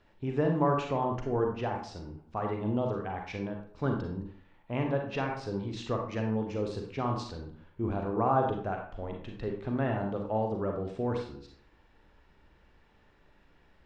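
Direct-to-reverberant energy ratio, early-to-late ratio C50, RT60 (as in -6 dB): 1.5 dB, 4.5 dB, 0.55 s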